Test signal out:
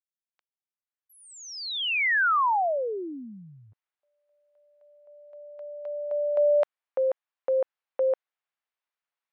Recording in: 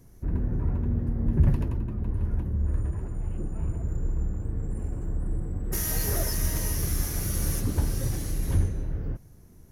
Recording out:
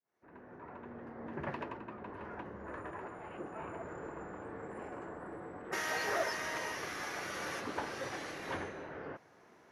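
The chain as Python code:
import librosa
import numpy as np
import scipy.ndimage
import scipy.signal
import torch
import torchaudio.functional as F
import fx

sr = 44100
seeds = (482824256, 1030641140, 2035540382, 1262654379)

y = fx.fade_in_head(x, sr, length_s=2.22)
y = fx.rider(y, sr, range_db=4, speed_s=2.0)
y = fx.bandpass_edges(y, sr, low_hz=740.0, high_hz=2400.0)
y = y * librosa.db_to_amplitude(8.0)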